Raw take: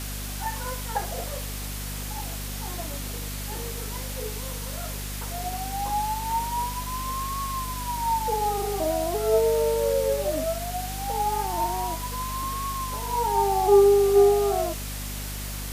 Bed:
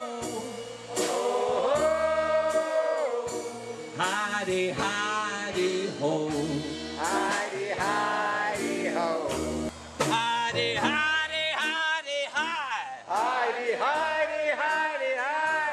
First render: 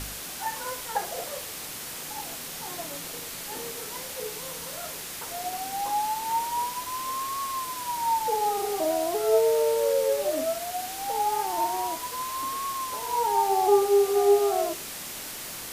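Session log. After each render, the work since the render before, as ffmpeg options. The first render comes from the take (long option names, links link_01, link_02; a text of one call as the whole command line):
ffmpeg -i in.wav -af "bandreject=frequency=50:width_type=h:width=4,bandreject=frequency=100:width_type=h:width=4,bandreject=frequency=150:width_type=h:width=4,bandreject=frequency=200:width_type=h:width=4,bandreject=frequency=250:width_type=h:width=4,bandreject=frequency=300:width_type=h:width=4,bandreject=frequency=350:width_type=h:width=4,bandreject=frequency=400:width_type=h:width=4" out.wav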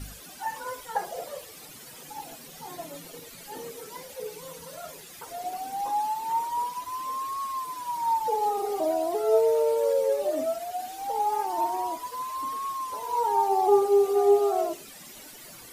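ffmpeg -i in.wav -af "afftdn=noise_reduction=14:noise_floor=-38" out.wav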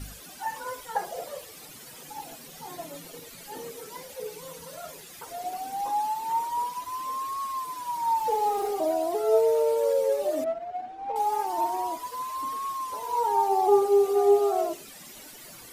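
ffmpeg -i in.wav -filter_complex "[0:a]asettb=1/sr,asplit=3[link_01][link_02][link_03];[link_01]atrim=end=8.174[link_04];[link_02]atrim=start=8.17:end=8.71,asetpts=PTS-STARTPTS,afade=type=in:duration=0.004:curve=qsin,afade=type=out:start_time=0.536:duration=0.004:curve=qsin,aeval=exprs='val(0)+0.5*0.00944*sgn(val(0))':channel_layout=same[link_05];[link_03]atrim=start=8.706[link_06];[link_04][link_05]acrossfade=duration=0.004:curve1=hsin:curve2=qsin[link_07];[link_07][link_06]acrossfade=duration=0.004:curve1=qsin:curve2=hsin,asettb=1/sr,asplit=3[link_08][link_09][link_10];[link_08]atrim=end=10.444[link_11];[link_09]atrim=start=10.44:end=11.16,asetpts=PTS-STARTPTS,afade=type=in:duration=0.004:curve=qsin,afade=type=out:start_time=0.716:duration=0.004:curve=qsin,adynamicsmooth=sensitivity=1:basefreq=1300[link_12];[link_10]atrim=start=11.156[link_13];[link_11][link_12]acrossfade=duration=0.004:curve1=hsin:curve2=qsin[link_14];[link_14][link_13]acrossfade=duration=0.004:curve1=qsin:curve2=hsin" out.wav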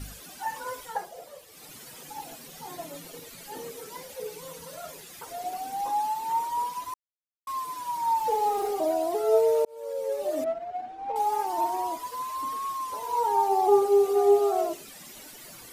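ffmpeg -i in.wav -filter_complex "[0:a]asplit=6[link_01][link_02][link_03][link_04][link_05][link_06];[link_01]atrim=end=1.1,asetpts=PTS-STARTPTS,afade=type=out:start_time=0.84:duration=0.26:silence=0.398107[link_07];[link_02]atrim=start=1.1:end=1.46,asetpts=PTS-STARTPTS,volume=-8dB[link_08];[link_03]atrim=start=1.46:end=6.94,asetpts=PTS-STARTPTS,afade=type=in:duration=0.26:silence=0.398107,afade=type=out:start_time=5.476:duration=0.004:curve=hsin[link_09];[link_04]atrim=start=6.94:end=7.47,asetpts=PTS-STARTPTS,volume=0[link_10];[link_05]atrim=start=7.47:end=9.65,asetpts=PTS-STARTPTS,afade=type=in:duration=0.004:curve=hsin,afade=type=out:start_time=2.176:duration=0.004:curve=hsin[link_11];[link_06]atrim=start=9.65,asetpts=PTS-STARTPTS,afade=type=in:duration=0.79[link_12];[link_07][link_08][link_09][link_10][link_11][link_12]concat=n=6:v=0:a=1" out.wav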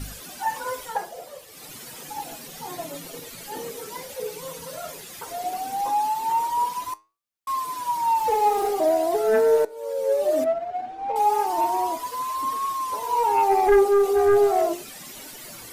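ffmpeg -i in.wav -af "aeval=exprs='0.335*sin(PI/2*2*val(0)/0.335)':channel_layout=same,flanger=delay=7.4:depth=2.3:regen=82:speed=0.66:shape=sinusoidal" out.wav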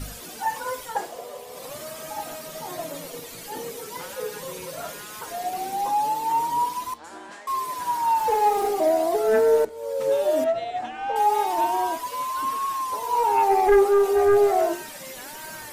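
ffmpeg -i in.wav -i bed.wav -filter_complex "[1:a]volume=-14.5dB[link_01];[0:a][link_01]amix=inputs=2:normalize=0" out.wav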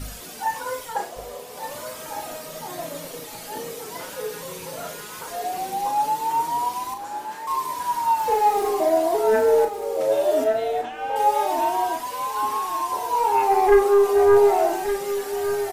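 ffmpeg -i in.wav -filter_complex "[0:a]asplit=2[link_01][link_02];[link_02]adelay=37,volume=-7dB[link_03];[link_01][link_03]amix=inputs=2:normalize=0,aecho=1:1:1167:0.316" out.wav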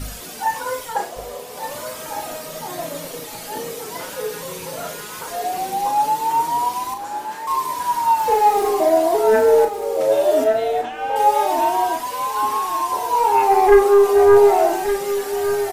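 ffmpeg -i in.wav -af "volume=4dB" out.wav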